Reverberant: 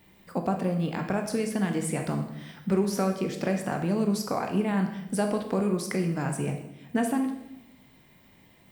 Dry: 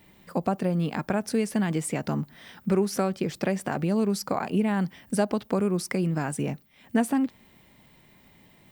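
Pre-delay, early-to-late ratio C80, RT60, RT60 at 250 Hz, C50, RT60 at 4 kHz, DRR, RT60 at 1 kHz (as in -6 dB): 15 ms, 10.0 dB, 0.90 s, 1.2 s, 7.0 dB, 0.75 s, 4.0 dB, 0.80 s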